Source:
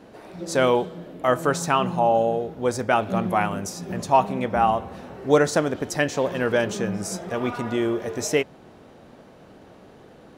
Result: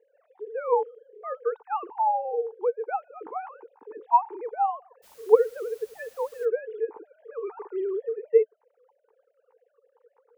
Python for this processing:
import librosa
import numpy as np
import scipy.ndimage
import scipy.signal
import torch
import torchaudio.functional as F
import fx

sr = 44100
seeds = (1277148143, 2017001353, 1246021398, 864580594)

y = fx.sine_speech(x, sr)
y = fx.double_bandpass(y, sr, hz=630.0, octaves=1.0)
y = fx.dmg_noise_colour(y, sr, seeds[0], colour='white', level_db=-58.0, at=(5.02, 6.44), fade=0.02)
y = F.gain(torch.from_numpy(y), 1.5).numpy()